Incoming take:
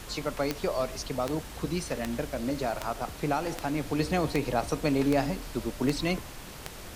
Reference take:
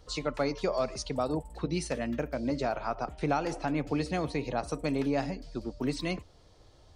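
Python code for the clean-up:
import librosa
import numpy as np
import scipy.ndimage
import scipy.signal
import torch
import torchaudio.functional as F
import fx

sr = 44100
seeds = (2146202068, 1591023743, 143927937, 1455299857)

y = fx.fix_declick_ar(x, sr, threshold=10.0)
y = fx.noise_reduce(y, sr, print_start_s=6.3, print_end_s=6.8, reduce_db=13.0)
y = fx.fix_level(y, sr, at_s=3.99, step_db=-4.0)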